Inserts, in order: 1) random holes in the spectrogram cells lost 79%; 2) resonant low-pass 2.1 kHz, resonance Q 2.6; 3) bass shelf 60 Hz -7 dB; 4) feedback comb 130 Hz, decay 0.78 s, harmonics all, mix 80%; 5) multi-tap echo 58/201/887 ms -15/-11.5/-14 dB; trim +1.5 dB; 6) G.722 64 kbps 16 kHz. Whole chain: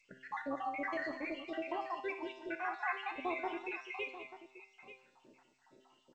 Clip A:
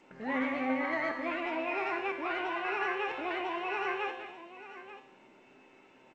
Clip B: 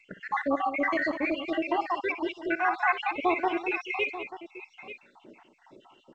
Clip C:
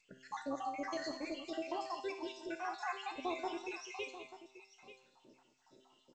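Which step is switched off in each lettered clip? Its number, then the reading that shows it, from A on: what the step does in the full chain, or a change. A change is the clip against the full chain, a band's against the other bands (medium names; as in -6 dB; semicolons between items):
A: 1, crest factor change -2.0 dB; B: 4, loudness change +11.5 LU; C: 2, 2 kHz band -5.5 dB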